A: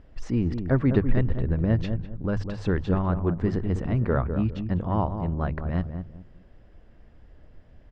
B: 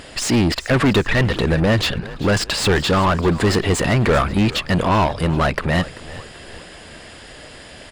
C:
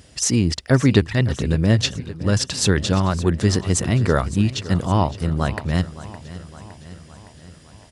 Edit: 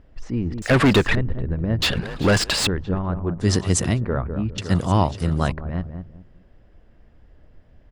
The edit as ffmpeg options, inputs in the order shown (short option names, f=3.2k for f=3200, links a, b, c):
-filter_complex "[1:a]asplit=2[a][b];[2:a]asplit=2[c][d];[0:a]asplit=5[e][f][g][h][i];[e]atrim=end=0.622[j];[a]atrim=start=0.618:end=1.152[k];[f]atrim=start=1.148:end=1.822[l];[b]atrim=start=1.818:end=2.672[m];[g]atrim=start=2.668:end=3.49[n];[c]atrim=start=3.39:end=4.01[o];[h]atrim=start=3.91:end=4.582[p];[d]atrim=start=4.578:end=5.522[q];[i]atrim=start=5.518[r];[j][k]acrossfade=d=0.004:c1=hsin:c2=hsin[s];[s][l]acrossfade=d=0.004:c1=hsin:c2=hsin[t];[t][m]acrossfade=d=0.004:c1=hsin:c2=hsin[u];[u][n]acrossfade=d=0.004:c1=hsin:c2=hsin[v];[v][o]acrossfade=d=0.1:c1=tri:c2=tri[w];[w][p]acrossfade=d=0.1:c1=tri:c2=tri[x];[x][q]acrossfade=d=0.004:c1=hsin:c2=hsin[y];[y][r]acrossfade=d=0.004:c1=hsin:c2=hsin"